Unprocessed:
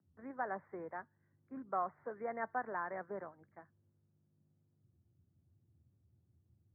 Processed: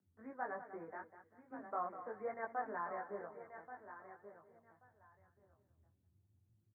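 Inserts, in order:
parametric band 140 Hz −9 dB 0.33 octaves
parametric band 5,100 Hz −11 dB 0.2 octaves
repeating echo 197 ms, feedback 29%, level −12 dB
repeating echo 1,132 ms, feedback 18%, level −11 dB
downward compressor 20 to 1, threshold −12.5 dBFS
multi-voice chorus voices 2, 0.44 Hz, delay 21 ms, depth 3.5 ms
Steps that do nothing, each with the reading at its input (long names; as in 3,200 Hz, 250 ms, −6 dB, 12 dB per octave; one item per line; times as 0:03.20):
parametric band 5,100 Hz: nothing at its input above 2,200 Hz
downward compressor, threshold −12.5 dBFS: peak of its input −24.0 dBFS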